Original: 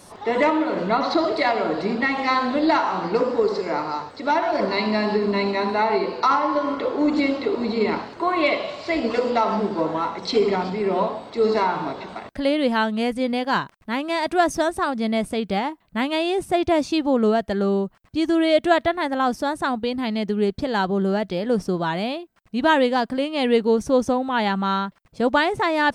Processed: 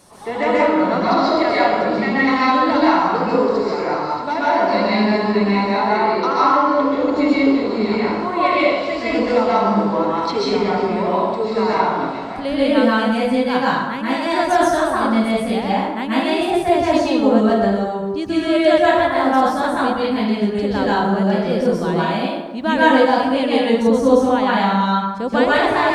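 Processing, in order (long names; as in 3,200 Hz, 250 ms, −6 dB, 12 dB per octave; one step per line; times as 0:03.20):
dense smooth reverb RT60 1.1 s, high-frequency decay 0.6×, pre-delay 115 ms, DRR −7.5 dB
level −3.5 dB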